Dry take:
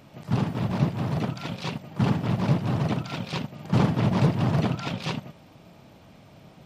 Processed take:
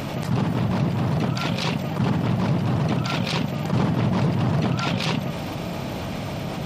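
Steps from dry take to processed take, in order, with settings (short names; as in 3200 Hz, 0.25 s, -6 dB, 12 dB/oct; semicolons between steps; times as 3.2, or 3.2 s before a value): fast leveller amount 70%; gain -2.5 dB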